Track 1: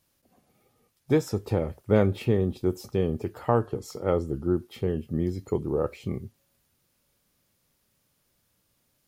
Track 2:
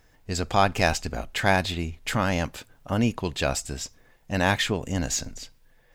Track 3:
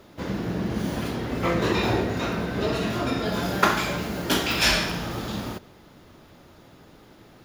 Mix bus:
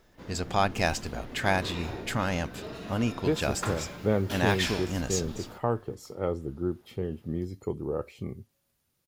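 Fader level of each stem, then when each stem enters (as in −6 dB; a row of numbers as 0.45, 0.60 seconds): −5.0, −4.5, −14.5 decibels; 2.15, 0.00, 0.00 seconds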